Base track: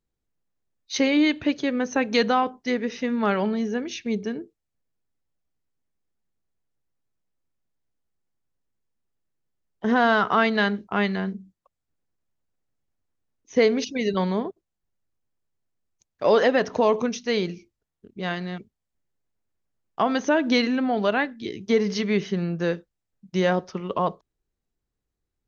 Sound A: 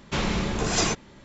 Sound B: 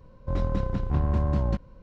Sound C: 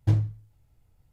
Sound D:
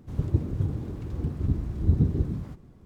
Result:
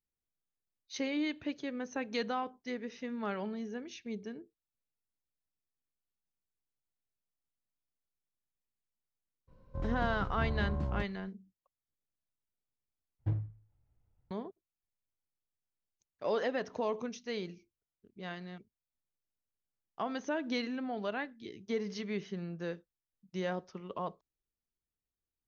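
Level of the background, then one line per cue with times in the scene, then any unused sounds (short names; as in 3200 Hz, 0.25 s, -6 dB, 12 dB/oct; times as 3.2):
base track -14 dB
9.47 add B -10 dB, fades 0.02 s
13.19 replace with C -11 dB + LPF 2000 Hz
not used: A, D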